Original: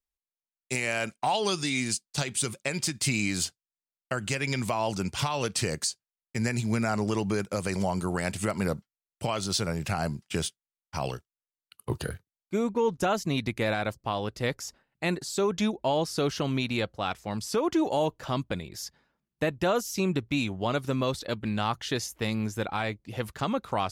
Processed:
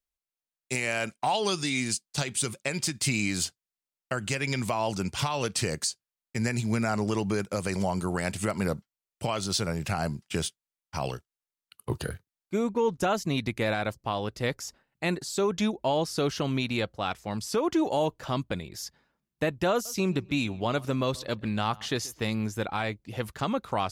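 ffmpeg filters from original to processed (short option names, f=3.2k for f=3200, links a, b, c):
-filter_complex "[0:a]asettb=1/sr,asplit=3[a][b][c];[a]atrim=end=19.724[d];[b]atrim=start=19.72:end=22.23,asetpts=PTS-STARTPTS,afade=t=in:d=0.004:c=qsin,afade=t=out:st=2.506:d=0.004:c=qsin,asplit=2[e][f];[f]adelay=132,lowpass=f=3.3k:p=1,volume=-22dB,asplit=2[g][h];[h]adelay=132,lowpass=f=3.3k:p=1,volume=0.36,asplit=2[i][j];[j]adelay=132,lowpass=f=3.3k:p=1,volume=0.36[k];[e][g][i][k]amix=inputs=4:normalize=0,atrim=end_sample=110691[l];[c]atrim=start=22.226[m];[d][l]acrossfade=d=0.004:c1=hsin:c2=qsin[n];[n][m]acrossfade=d=0.004:c1=qsin:c2=hsin"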